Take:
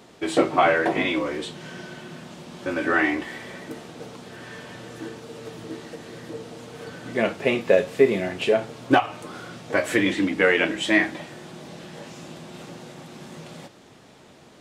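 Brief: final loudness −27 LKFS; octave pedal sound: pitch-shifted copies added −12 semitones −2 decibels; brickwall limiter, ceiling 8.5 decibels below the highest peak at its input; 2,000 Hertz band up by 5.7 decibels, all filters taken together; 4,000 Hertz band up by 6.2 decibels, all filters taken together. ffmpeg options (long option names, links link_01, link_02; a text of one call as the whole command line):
ffmpeg -i in.wav -filter_complex "[0:a]equalizer=frequency=2000:width_type=o:gain=5.5,equalizer=frequency=4000:width_type=o:gain=6,alimiter=limit=-10.5dB:level=0:latency=1,asplit=2[link_01][link_02];[link_02]asetrate=22050,aresample=44100,atempo=2,volume=-2dB[link_03];[link_01][link_03]amix=inputs=2:normalize=0,volume=-5dB" out.wav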